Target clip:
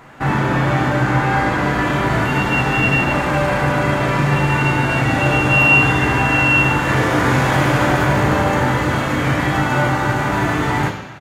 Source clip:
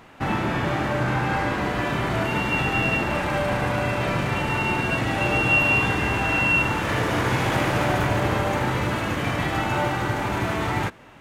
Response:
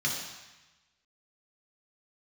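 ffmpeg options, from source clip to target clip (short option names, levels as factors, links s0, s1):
-filter_complex "[0:a]asplit=2[s0][s1];[s1]adelay=36,volume=0.237[s2];[s0][s2]amix=inputs=2:normalize=0,asplit=2[s3][s4];[1:a]atrim=start_sample=2205[s5];[s4][s5]afir=irnorm=-1:irlink=0,volume=0.299[s6];[s3][s6]amix=inputs=2:normalize=0,volume=1.68"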